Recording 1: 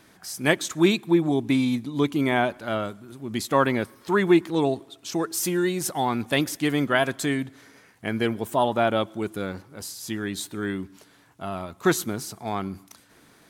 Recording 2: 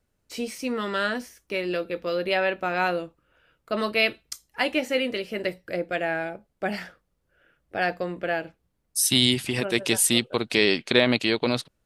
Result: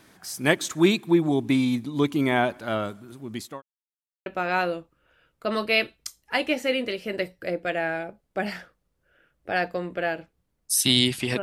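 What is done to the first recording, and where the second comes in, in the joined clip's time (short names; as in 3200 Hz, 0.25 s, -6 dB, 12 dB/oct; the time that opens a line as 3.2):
recording 1
2.92–3.62 fade out equal-power
3.62–4.26 mute
4.26 switch to recording 2 from 2.52 s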